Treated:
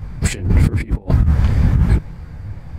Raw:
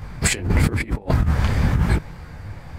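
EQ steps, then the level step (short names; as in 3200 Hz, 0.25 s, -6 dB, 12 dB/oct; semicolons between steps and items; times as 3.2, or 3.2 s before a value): low shelf 330 Hz +10.5 dB; -4.5 dB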